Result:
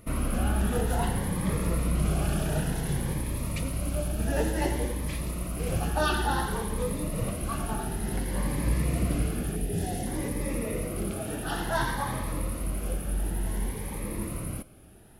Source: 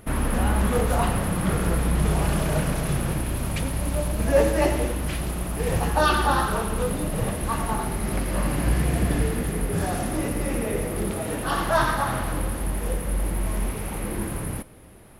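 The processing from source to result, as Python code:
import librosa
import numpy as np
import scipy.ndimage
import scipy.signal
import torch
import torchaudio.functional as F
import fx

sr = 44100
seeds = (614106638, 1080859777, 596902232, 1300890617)

y = fx.band_shelf(x, sr, hz=1200.0, db=-11.0, octaves=1.1, at=(9.56, 10.07))
y = fx.notch_cascade(y, sr, direction='rising', hz=0.56)
y = y * librosa.db_to_amplitude(-4.0)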